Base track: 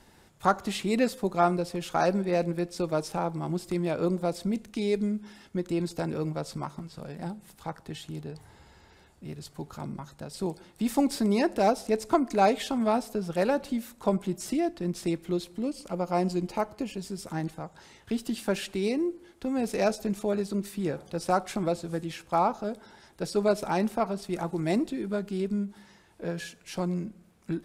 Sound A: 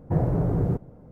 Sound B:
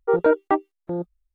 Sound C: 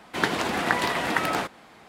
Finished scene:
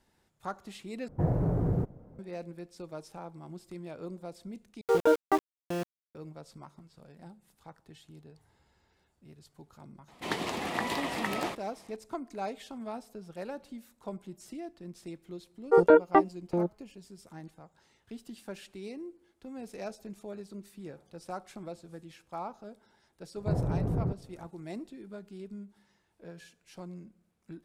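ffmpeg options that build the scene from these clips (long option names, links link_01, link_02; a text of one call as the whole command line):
ffmpeg -i bed.wav -i cue0.wav -i cue1.wav -i cue2.wav -filter_complex "[1:a]asplit=2[link_01][link_02];[2:a]asplit=2[link_03][link_04];[0:a]volume=-14dB[link_05];[link_03]aeval=exprs='val(0)*gte(abs(val(0)),0.0398)':channel_layout=same[link_06];[3:a]equalizer=frequency=1500:width_type=o:width=0.28:gain=-10.5[link_07];[link_02]bass=frequency=250:gain=2,treble=frequency=4000:gain=-11[link_08];[link_05]asplit=3[link_09][link_10][link_11];[link_09]atrim=end=1.084[link_12];[link_01]atrim=end=1.11,asetpts=PTS-STARTPTS,volume=-4.5dB[link_13];[link_10]atrim=start=2.186:end=4.814[link_14];[link_06]atrim=end=1.34,asetpts=PTS-STARTPTS,volume=-5.5dB[link_15];[link_11]atrim=start=6.146[link_16];[link_07]atrim=end=1.88,asetpts=PTS-STARTPTS,volume=-7dB,afade=type=in:duration=0.004:curve=hsin,afade=type=out:start_time=1.876:duration=0.004:curve=hsin,adelay=10080[link_17];[link_04]atrim=end=1.34,asetpts=PTS-STARTPTS,volume=-1dB,afade=type=in:duration=0.004:curve=hsin,afade=type=out:start_time=1.336:duration=0.004:curve=hsin,adelay=15640[link_18];[link_08]atrim=end=1.11,asetpts=PTS-STARTPTS,volume=-8dB,afade=type=in:duration=0.004:curve=hsin,afade=type=out:start_time=1.106:duration=0.004:curve=hsin,adelay=23360[link_19];[link_12][link_13]acrossfade=duration=0.004:curve1=hsin:curve2=hsin[link_20];[link_20][link_14]acrossfade=duration=0.004:curve1=hsin:curve2=hsin[link_21];[link_21][link_15]acrossfade=duration=0.004:curve1=hsin:curve2=hsin[link_22];[link_22][link_16]acrossfade=duration=0.004:curve1=hsin:curve2=hsin[link_23];[link_23][link_17][link_18][link_19]amix=inputs=4:normalize=0" out.wav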